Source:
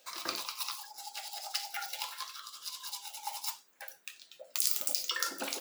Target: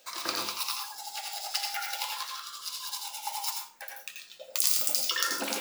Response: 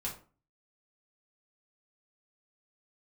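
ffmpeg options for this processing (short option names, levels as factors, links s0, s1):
-filter_complex "[0:a]asplit=2[s0][s1];[1:a]atrim=start_sample=2205,adelay=82[s2];[s1][s2]afir=irnorm=-1:irlink=0,volume=0.708[s3];[s0][s3]amix=inputs=2:normalize=0,volume=1.5"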